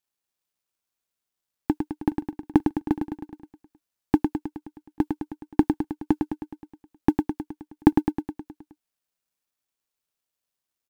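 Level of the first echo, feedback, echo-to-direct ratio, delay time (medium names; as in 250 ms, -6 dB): -5.5 dB, 59%, -3.5 dB, 105 ms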